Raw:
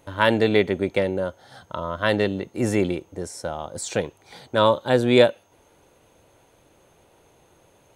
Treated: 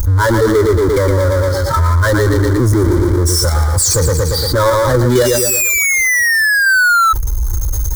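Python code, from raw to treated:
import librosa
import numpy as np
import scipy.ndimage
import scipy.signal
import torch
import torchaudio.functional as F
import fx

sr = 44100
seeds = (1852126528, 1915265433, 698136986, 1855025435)

p1 = fx.bin_expand(x, sr, power=2.0)
p2 = p1 + fx.echo_feedback(p1, sr, ms=116, feedback_pct=34, wet_db=-8.5, dry=0)
p3 = fx.spec_paint(p2, sr, seeds[0], shape='fall', start_s=5.15, length_s=1.98, low_hz=1300.0, high_hz=3000.0, level_db=-22.0)
p4 = fx.peak_eq(p3, sr, hz=8700.0, db=-4.0, octaves=0.51)
p5 = fx.power_curve(p4, sr, exponent=0.35)
p6 = fx.fixed_phaser(p5, sr, hz=720.0, stages=6)
p7 = fx.level_steps(p6, sr, step_db=13)
p8 = p6 + (p7 * 10.0 ** (1.5 / 20.0))
p9 = fx.peak_eq(p8, sr, hz=65.0, db=13.5, octaves=2.6)
p10 = fx.env_flatten(p9, sr, amount_pct=70)
y = p10 * 10.0 ** (-6.5 / 20.0)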